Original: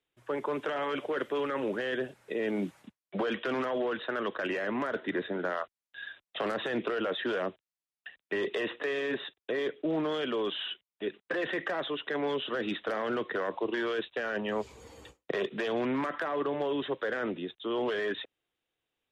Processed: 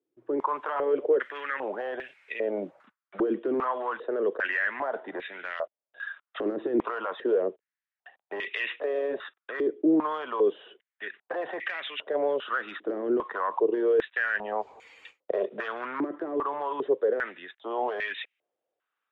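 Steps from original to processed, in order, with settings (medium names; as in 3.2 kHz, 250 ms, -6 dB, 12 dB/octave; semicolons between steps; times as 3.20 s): in parallel at 0 dB: peak limiter -25 dBFS, peak gain reduction 7 dB; on the sum: step-sequenced band-pass 2.5 Hz 340–2300 Hz; trim +6.5 dB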